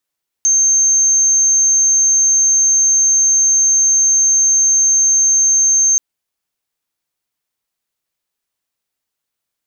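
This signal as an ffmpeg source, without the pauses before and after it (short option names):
-f lavfi -i "sine=f=6340:d=5.53:r=44100,volume=9.06dB"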